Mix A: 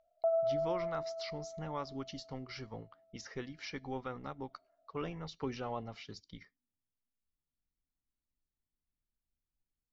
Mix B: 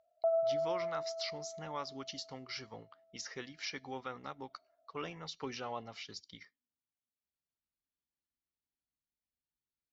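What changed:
speech: add spectral tilt +2.5 dB per octave
master: add high-pass filter 41 Hz

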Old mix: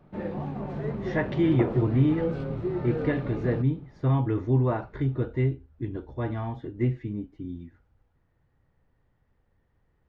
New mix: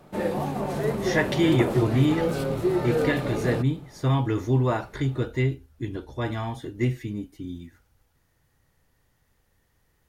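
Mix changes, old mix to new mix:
first sound: add parametric band 580 Hz +6.5 dB 2.4 octaves
master: remove head-to-tape spacing loss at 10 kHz 39 dB

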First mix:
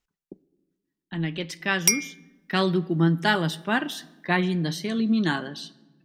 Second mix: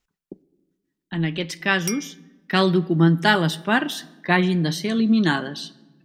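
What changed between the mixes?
speech +4.5 dB
background −9.0 dB

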